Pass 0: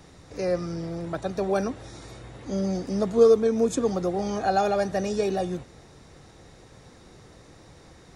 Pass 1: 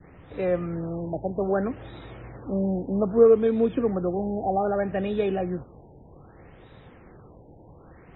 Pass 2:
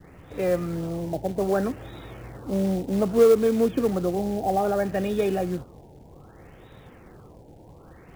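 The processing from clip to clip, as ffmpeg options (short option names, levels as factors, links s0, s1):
-af "adynamicequalizer=threshold=0.0158:dfrequency=890:dqfactor=0.92:tfrequency=890:tqfactor=0.92:attack=5:release=100:ratio=0.375:range=2.5:mode=cutabove:tftype=bell,afftfilt=real='re*lt(b*sr/1024,940*pow(4000/940,0.5+0.5*sin(2*PI*0.63*pts/sr)))':imag='im*lt(b*sr/1024,940*pow(4000/940,0.5+0.5*sin(2*PI*0.63*pts/sr)))':win_size=1024:overlap=0.75,volume=1.19"
-filter_complex "[0:a]acrusher=bits=5:mode=log:mix=0:aa=0.000001,asplit=2[s0][s1];[s1]asoftclip=type=hard:threshold=0.126,volume=0.531[s2];[s0][s2]amix=inputs=2:normalize=0,volume=0.75"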